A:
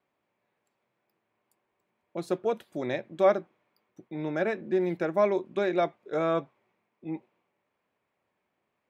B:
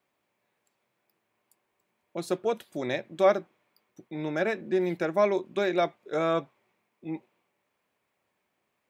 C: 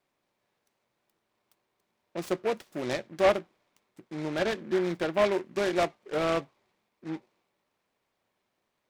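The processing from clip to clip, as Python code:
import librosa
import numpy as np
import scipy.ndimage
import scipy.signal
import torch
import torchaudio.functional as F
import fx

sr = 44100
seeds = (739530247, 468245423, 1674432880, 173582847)

y1 = fx.high_shelf(x, sr, hz=2800.0, db=8.0)
y2 = fx.noise_mod_delay(y1, sr, seeds[0], noise_hz=1400.0, depth_ms=0.064)
y2 = F.gain(torch.from_numpy(y2), -1.0).numpy()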